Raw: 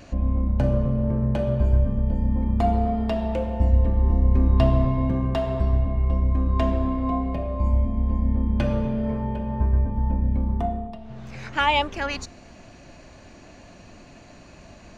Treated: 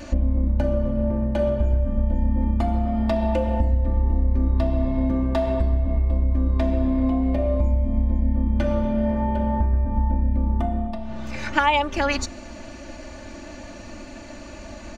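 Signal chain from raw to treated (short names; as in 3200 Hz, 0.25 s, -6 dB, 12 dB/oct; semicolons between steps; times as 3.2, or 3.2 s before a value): compressor, threshold -26 dBFS, peak gain reduction 12.5 dB; comb 3.4 ms, depth 88%; gain +5.5 dB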